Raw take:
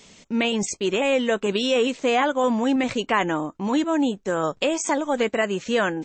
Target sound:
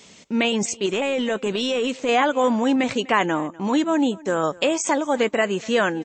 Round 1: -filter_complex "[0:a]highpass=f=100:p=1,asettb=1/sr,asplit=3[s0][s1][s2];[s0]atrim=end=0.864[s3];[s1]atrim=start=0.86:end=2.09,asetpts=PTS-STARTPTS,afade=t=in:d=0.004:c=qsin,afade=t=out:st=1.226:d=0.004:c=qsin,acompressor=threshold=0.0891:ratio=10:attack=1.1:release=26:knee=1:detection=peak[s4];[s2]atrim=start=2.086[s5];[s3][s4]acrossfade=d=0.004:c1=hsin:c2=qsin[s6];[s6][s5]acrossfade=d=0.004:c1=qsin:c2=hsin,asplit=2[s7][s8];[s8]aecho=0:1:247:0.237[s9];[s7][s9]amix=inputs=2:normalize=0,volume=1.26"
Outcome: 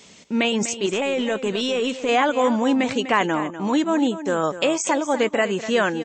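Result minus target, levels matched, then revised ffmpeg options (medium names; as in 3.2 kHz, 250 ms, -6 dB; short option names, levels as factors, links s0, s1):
echo-to-direct +10 dB
-filter_complex "[0:a]highpass=f=100:p=1,asettb=1/sr,asplit=3[s0][s1][s2];[s0]atrim=end=0.864[s3];[s1]atrim=start=0.86:end=2.09,asetpts=PTS-STARTPTS,afade=t=in:d=0.004:c=qsin,afade=t=out:st=1.226:d=0.004:c=qsin,acompressor=threshold=0.0891:ratio=10:attack=1.1:release=26:knee=1:detection=peak[s4];[s2]atrim=start=2.086[s5];[s3][s4]acrossfade=d=0.004:c1=hsin:c2=qsin[s6];[s6][s5]acrossfade=d=0.004:c1=qsin:c2=hsin,asplit=2[s7][s8];[s8]aecho=0:1:247:0.075[s9];[s7][s9]amix=inputs=2:normalize=0,volume=1.26"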